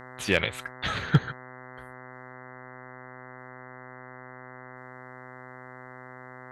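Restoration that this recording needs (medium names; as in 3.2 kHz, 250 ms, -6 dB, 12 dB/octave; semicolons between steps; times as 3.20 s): clip repair -8.5 dBFS; de-hum 127.2 Hz, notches 16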